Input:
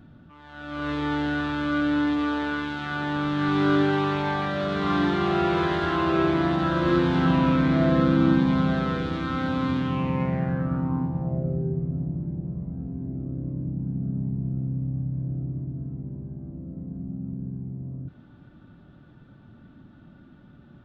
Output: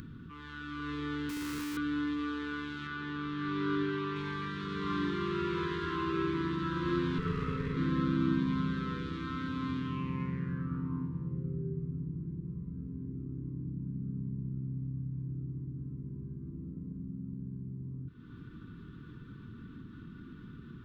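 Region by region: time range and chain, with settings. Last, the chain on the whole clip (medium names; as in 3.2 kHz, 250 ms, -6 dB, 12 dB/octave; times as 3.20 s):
1.29–1.77 s: low-pass 1.2 kHz 24 dB/octave + Schmitt trigger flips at -37 dBFS
2.87–4.16 s: distance through air 82 m + hum notches 50/100/150/200/250/300/350/400/450 Hz
7.18–7.77 s: comb filter that takes the minimum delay 1.5 ms + treble shelf 4.3 kHz -10.5 dB
whole clip: elliptic band-stop 460–1000 Hz, stop band 40 dB; upward compressor, threshold -26 dBFS; trim -9 dB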